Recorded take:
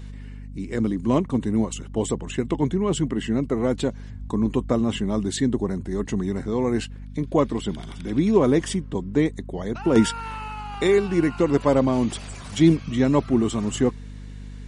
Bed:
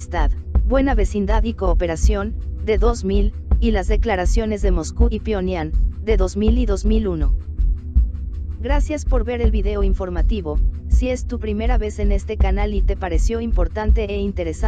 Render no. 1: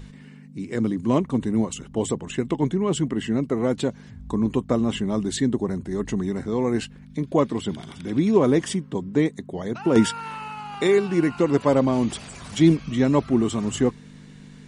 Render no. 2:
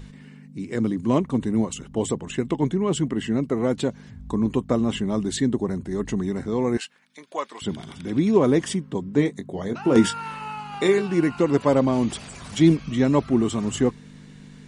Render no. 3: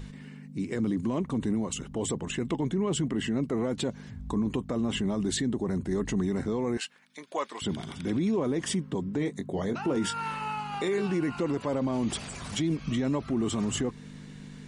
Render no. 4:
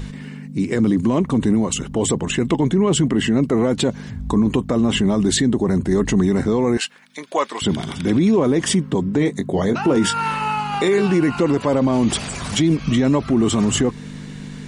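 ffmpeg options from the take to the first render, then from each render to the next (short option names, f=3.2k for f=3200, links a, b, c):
-af "bandreject=f=50:t=h:w=6,bandreject=f=100:t=h:w=6"
-filter_complex "[0:a]asettb=1/sr,asplit=3[a][b][c];[a]atrim=end=6.774[d];[b]atrim=start=6.77:end=7.62,asetpts=PTS-STARTPTS,afade=t=in:d=0.004:c=qsin,afade=t=out:st=0.846:d=0.004:c=qsin,highpass=920[e];[c]atrim=start=7.616[f];[d][e]acrossfade=d=0.004:c1=hsin:c2=qsin[g];[g][f]acrossfade=d=0.004:c1=qsin:c2=hsin,asettb=1/sr,asplit=3[h][i][j];[h]atrim=end=9.164[k];[i]atrim=start=9.16:end=11.02,asetpts=PTS-STARTPTS,afade=t=in:d=0.004:c=qsin,afade=t=out:st=1.856:d=0.004:c=qsin,asplit=2[l][m];[m]adelay=21,volume=-9dB[n];[l][n]amix=inputs=2:normalize=0,atrim=end_sample=82026[o];[j]atrim=start=11.016[p];[k][o]acrossfade=d=0.004:c1=hsin:c2=qsin[q];[q][p]acrossfade=d=0.004:c1=qsin:c2=hsin"
-af "acompressor=threshold=-20dB:ratio=6,alimiter=limit=-20.5dB:level=0:latency=1:release=13"
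-af "volume=11.5dB"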